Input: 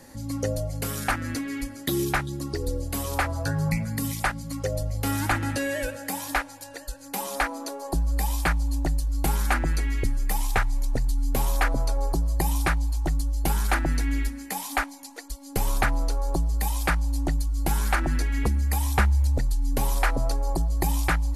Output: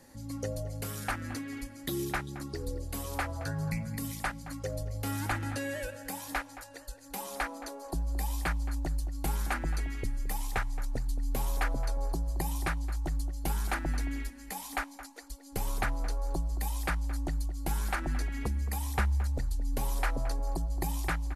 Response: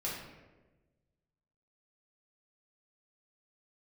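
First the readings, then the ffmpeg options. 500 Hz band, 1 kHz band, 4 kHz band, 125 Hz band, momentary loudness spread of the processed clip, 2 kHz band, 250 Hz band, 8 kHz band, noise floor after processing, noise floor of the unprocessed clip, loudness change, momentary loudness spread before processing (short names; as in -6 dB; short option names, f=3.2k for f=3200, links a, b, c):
-8.0 dB, -8.0 dB, -8.0 dB, -7.5 dB, 7 LU, -8.0 dB, -8.0 dB, -8.0 dB, -49 dBFS, -43 dBFS, -8.0 dB, 6 LU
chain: -filter_complex "[0:a]asplit=2[a][b];[b]adelay=221,lowpass=f=2k:p=1,volume=-13dB,asplit=2[c][d];[d]adelay=221,lowpass=f=2k:p=1,volume=0.17[e];[a][c][e]amix=inputs=3:normalize=0,volume=-8dB"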